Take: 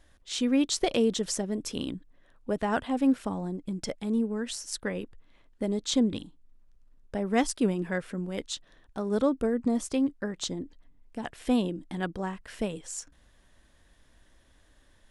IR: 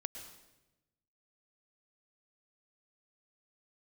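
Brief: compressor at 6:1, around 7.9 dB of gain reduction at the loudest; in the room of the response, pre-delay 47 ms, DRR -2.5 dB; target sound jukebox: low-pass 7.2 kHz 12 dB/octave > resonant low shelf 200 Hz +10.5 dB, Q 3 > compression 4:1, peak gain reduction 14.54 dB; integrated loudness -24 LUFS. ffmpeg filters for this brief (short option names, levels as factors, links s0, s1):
-filter_complex "[0:a]acompressor=threshold=0.0398:ratio=6,asplit=2[s0][s1];[1:a]atrim=start_sample=2205,adelay=47[s2];[s1][s2]afir=irnorm=-1:irlink=0,volume=1.58[s3];[s0][s3]amix=inputs=2:normalize=0,lowpass=7200,lowshelf=f=200:t=q:w=3:g=10.5,acompressor=threshold=0.0178:ratio=4,volume=5.01"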